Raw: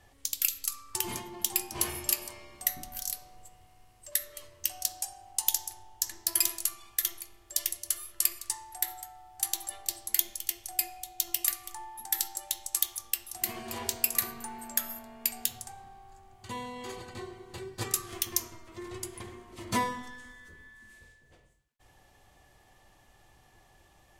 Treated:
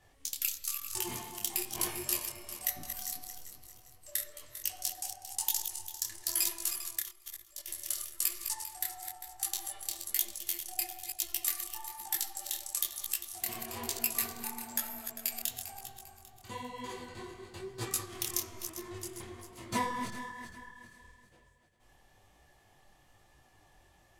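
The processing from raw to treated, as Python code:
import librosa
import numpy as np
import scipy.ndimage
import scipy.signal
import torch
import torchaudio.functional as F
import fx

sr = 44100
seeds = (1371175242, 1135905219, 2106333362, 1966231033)

y = fx.reverse_delay_fb(x, sr, ms=199, feedback_pct=58, wet_db=-8)
y = fx.level_steps(y, sr, step_db=19, at=(6.99, 7.67), fade=0.02)
y = fx.detune_double(y, sr, cents=37)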